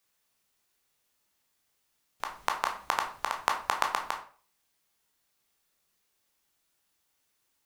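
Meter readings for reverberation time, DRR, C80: 0.40 s, 2.0 dB, 13.5 dB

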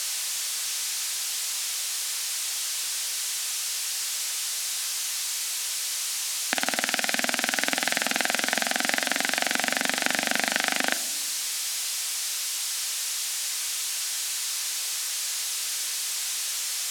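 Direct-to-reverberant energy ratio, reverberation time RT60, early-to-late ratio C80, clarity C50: 11.0 dB, 1.0 s, 16.5 dB, 14.5 dB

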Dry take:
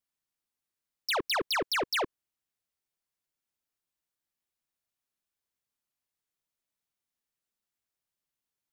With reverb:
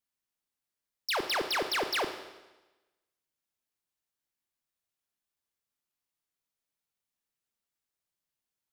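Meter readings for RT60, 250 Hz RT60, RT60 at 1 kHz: 1.1 s, 1.1 s, 1.1 s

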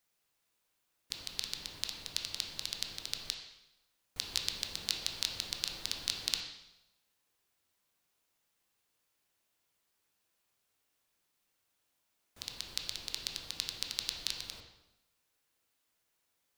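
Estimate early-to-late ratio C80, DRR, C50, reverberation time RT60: 7.5 dB, 2.0 dB, 5.0 dB, 0.90 s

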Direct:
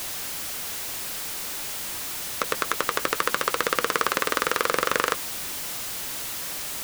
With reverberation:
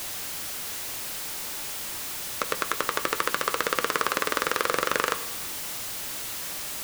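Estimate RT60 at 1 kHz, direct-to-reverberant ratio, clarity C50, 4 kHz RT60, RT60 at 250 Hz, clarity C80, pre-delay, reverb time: 1.3 s, 11.5 dB, 14.0 dB, 1.2 s, 1.3 s, 15.0 dB, 4 ms, 1.3 s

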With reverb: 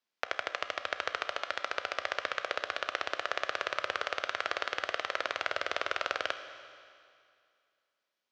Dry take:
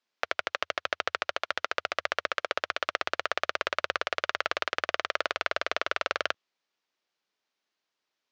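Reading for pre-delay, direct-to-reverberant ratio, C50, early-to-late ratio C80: 16 ms, 9.0 dB, 10.0 dB, 11.0 dB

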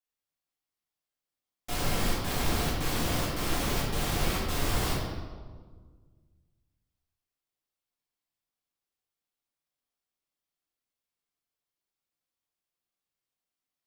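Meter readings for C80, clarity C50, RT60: 2.5 dB, 0.0 dB, 1.6 s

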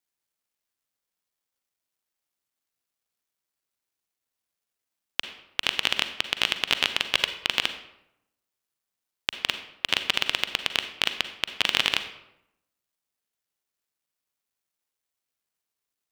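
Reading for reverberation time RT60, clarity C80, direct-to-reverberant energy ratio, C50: 0.85 s, 12.5 dB, 9.0 dB, 10.0 dB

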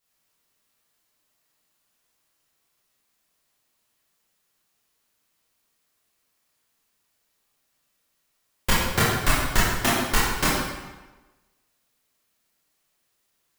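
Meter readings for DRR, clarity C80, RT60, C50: −8.0 dB, 2.0 dB, 1.2 s, −1.0 dB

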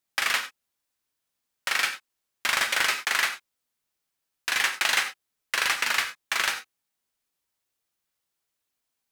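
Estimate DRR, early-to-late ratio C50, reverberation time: 6.0 dB, 10.0 dB, non-exponential decay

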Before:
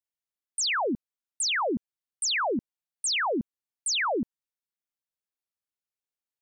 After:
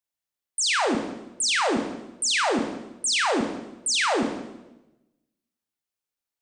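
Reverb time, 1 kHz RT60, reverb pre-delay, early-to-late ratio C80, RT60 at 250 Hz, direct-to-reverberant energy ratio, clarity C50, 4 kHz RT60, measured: 1.0 s, 0.95 s, 24 ms, 8.0 dB, 1.1 s, 3.5 dB, 6.0 dB, 0.90 s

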